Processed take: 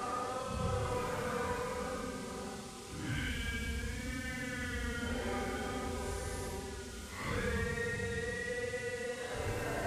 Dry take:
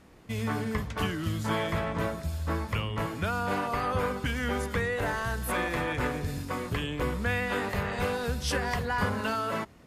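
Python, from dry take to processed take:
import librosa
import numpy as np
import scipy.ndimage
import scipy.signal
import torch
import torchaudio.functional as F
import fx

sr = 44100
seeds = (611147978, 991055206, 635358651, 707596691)

y = fx.paulstretch(x, sr, seeds[0], factor=8.4, window_s=0.05, from_s=3.88)
y = fx.dmg_noise_band(y, sr, seeds[1], low_hz=1900.0, high_hz=9600.0, level_db=-45.0)
y = y * 10.0 ** (-8.5 / 20.0)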